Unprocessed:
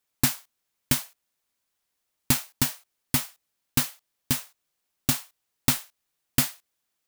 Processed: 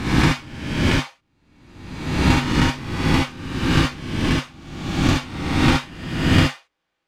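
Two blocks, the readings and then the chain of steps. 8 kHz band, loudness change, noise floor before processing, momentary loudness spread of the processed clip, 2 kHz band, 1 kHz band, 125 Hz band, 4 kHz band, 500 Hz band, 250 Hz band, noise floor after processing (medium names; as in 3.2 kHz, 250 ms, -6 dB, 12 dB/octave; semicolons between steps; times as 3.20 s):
-5.5 dB, +6.0 dB, -80 dBFS, 10 LU, +12.5 dB, +14.0 dB, +13.5 dB, +7.0 dB, +17.0 dB, +13.5 dB, -77 dBFS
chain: reverse spectral sustain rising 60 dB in 1.11 s; low-pass 2.6 kHz 12 dB/octave; gated-style reverb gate 90 ms rising, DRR -2.5 dB; trim +3.5 dB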